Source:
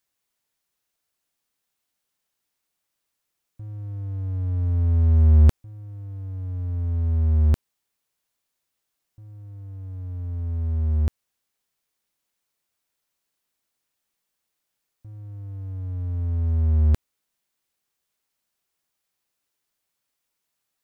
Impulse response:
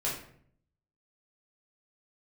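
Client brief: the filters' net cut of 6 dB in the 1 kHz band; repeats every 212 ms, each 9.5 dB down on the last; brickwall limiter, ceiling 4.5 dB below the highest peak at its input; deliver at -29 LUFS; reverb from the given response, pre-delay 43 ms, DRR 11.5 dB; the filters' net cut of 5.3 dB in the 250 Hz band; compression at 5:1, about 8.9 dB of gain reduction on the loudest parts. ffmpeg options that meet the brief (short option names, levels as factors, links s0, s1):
-filter_complex "[0:a]equalizer=f=250:t=o:g=-5.5,equalizer=f=1000:t=o:g=-8,acompressor=threshold=0.0891:ratio=5,alimiter=limit=0.0841:level=0:latency=1,aecho=1:1:212|424|636|848:0.335|0.111|0.0365|0.012,asplit=2[s0][s1];[1:a]atrim=start_sample=2205,adelay=43[s2];[s1][s2]afir=irnorm=-1:irlink=0,volume=0.133[s3];[s0][s3]amix=inputs=2:normalize=0,volume=1.12"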